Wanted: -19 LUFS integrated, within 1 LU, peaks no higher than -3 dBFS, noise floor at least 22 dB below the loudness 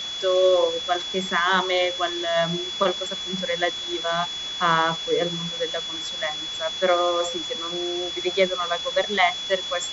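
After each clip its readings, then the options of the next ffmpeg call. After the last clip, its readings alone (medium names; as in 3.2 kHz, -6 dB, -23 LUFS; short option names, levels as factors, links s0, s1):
steady tone 3.4 kHz; tone level -29 dBFS; noise floor -32 dBFS; noise floor target -46 dBFS; loudness -23.5 LUFS; peak level -6.5 dBFS; loudness target -19.0 LUFS
-> -af "bandreject=f=3400:w=30"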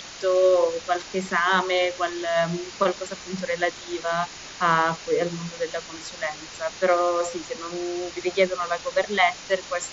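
steady tone not found; noise floor -40 dBFS; noise floor target -47 dBFS
-> -af "afftdn=nr=7:nf=-40"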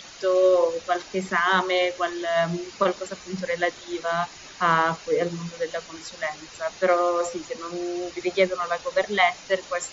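noise floor -44 dBFS; noise floor target -47 dBFS
-> -af "afftdn=nr=6:nf=-44"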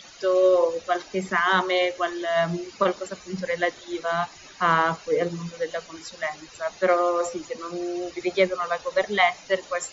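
noise floor -47 dBFS; loudness -25.0 LUFS; peak level -7.0 dBFS; loudness target -19.0 LUFS
-> -af "volume=2,alimiter=limit=0.708:level=0:latency=1"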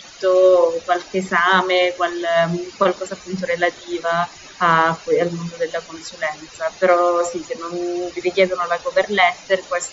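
loudness -19.0 LUFS; peak level -3.0 dBFS; noise floor -41 dBFS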